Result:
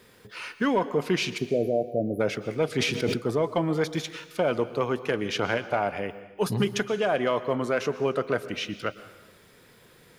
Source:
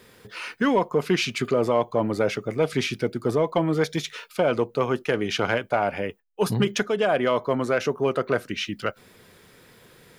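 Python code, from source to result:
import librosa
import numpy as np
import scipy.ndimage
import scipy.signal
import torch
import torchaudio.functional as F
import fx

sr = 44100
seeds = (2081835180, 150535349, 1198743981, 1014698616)

y = fx.brickwall_bandstop(x, sr, low_hz=760.0, high_hz=10000.0, at=(1.37, 2.19), fade=0.02)
y = fx.rev_plate(y, sr, seeds[0], rt60_s=1.1, hf_ratio=0.95, predelay_ms=105, drr_db=14.0)
y = fx.sustainer(y, sr, db_per_s=37.0, at=(2.75, 3.16))
y = F.gain(torch.from_numpy(y), -3.0).numpy()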